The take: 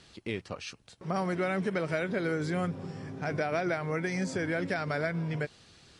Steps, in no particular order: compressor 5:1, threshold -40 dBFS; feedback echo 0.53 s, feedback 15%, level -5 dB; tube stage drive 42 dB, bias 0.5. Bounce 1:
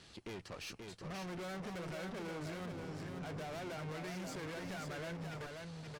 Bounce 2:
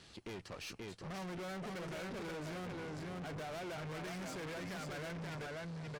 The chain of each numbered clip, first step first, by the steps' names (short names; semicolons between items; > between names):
tube stage > feedback echo > compressor; feedback echo > tube stage > compressor